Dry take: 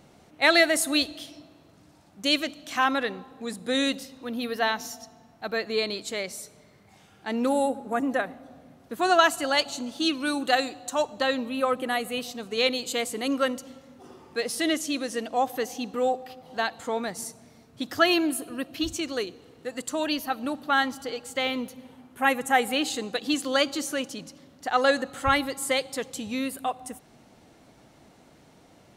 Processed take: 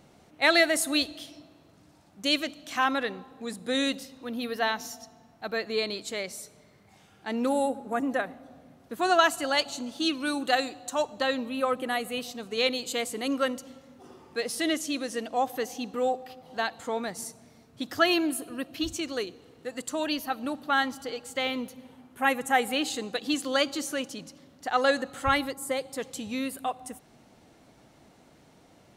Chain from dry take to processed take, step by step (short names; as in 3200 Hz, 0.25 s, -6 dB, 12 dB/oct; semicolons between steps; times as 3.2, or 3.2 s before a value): 25.51–25.99 bell 3400 Hz -12.5 dB -> -5 dB 2.4 oct; gain -2 dB